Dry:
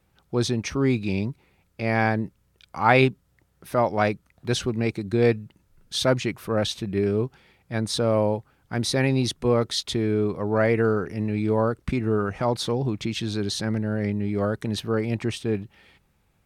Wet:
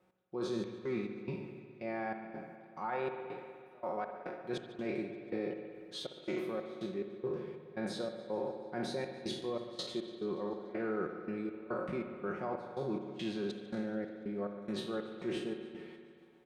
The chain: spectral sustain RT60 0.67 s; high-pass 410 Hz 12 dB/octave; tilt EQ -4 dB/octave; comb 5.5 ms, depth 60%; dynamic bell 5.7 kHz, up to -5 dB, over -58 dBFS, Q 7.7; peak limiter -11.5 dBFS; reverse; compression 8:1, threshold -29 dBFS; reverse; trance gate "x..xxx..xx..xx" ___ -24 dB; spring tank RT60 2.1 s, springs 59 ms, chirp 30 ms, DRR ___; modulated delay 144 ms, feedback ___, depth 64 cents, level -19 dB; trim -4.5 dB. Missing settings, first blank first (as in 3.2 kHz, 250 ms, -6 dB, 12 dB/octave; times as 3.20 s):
141 bpm, 6.5 dB, 67%